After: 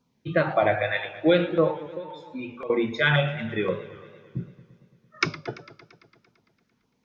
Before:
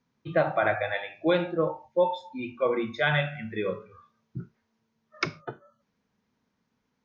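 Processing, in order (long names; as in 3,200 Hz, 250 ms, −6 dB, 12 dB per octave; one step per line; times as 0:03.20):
0:01.87–0:02.70: downward compressor 12 to 1, threshold −36 dBFS, peak gain reduction 18.5 dB
auto-filter notch saw down 1.9 Hz 560–2,000 Hz
tape wow and flutter 26 cents
feedback echo with a swinging delay time 113 ms, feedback 71%, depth 113 cents, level −17 dB
level +5 dB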